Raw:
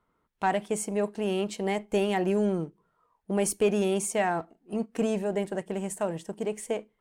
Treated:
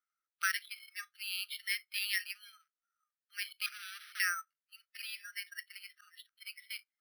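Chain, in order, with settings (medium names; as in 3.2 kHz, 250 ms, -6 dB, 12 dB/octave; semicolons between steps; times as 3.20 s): spectral noise reduction 17 dB; 3.66–4.20 s: valve stage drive 36 dB, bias 0.45; 5.75–6.36 s: slow attack 210 ms; brick-wall FIR band-pass 1.2–4.4 kHz; careless resampling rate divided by 6×, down none, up hold; trim +3.5 dB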